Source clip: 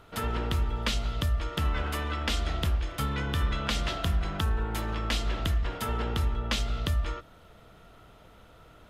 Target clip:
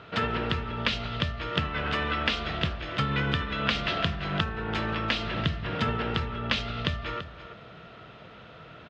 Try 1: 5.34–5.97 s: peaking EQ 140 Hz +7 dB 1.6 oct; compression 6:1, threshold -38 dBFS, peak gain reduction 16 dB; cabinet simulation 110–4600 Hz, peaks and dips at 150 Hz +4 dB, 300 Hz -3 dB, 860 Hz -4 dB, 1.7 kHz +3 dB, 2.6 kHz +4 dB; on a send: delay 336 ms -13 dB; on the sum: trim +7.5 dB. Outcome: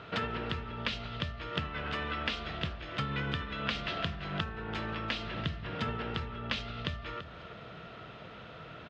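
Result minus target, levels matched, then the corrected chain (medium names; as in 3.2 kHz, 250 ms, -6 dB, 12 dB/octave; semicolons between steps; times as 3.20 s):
compression: peak gain reduction +7 dB
5.34–5.97 s: peaking EQ 140 Hz +7 dB 1.6 oct; compression 6:1, threshold -29.5 dBFS, peak gain reduction 9 dB; cabinet simulation 110–4600 Hz, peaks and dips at 150 Hz +4 dB, 300 Hz -3 dB, 860 Hz -4 dB, 1.7 kHz +3 dB, 2.6 kHz +4 dB; on a send: delay 336 ms -13 dB; on the sum: trim +7.5 dB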